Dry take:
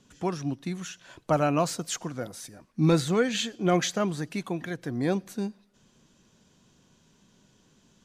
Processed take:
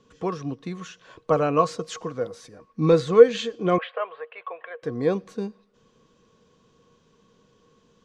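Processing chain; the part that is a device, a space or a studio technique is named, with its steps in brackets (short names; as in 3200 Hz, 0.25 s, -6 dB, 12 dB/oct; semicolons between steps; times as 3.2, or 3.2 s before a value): inside a cardboard box (LPF 5300 Hz 12 dB/oct; small resonant body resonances 470/1100 Hz, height 18 dB, ringing for 85 ms); 3.78–4.83 elliptic band-pass 550–2900 Hz, stop band 40 dB; gain -1 dB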